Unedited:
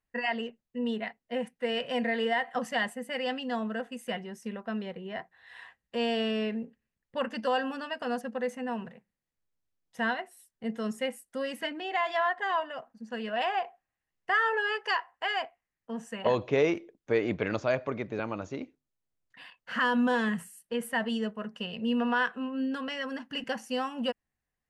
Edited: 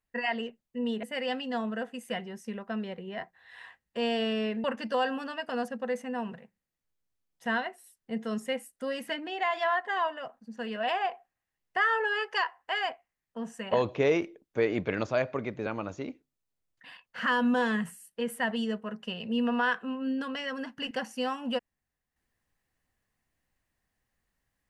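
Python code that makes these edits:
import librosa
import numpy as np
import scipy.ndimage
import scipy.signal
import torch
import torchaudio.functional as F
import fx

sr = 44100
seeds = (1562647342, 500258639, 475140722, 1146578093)

y = fx.edit(x, sr, fx.cut(start_s=1.03, length_s=1.98),
    fx.cut(start_s=6.62, length_s=0.55), tone=tone)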